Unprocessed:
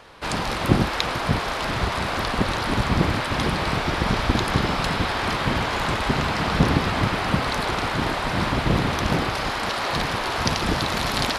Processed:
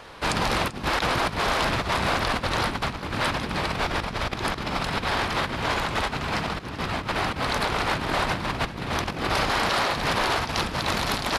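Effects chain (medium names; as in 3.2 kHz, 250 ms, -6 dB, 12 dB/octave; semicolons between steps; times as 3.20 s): rattle on loud lows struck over -26 dBFS, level -24 dBFS; compressor with a negative ratio -26 dBFS, ratio -0.5; frequency-shifting echo 390 ms, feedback 49%, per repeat +100 Hz, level -17 dB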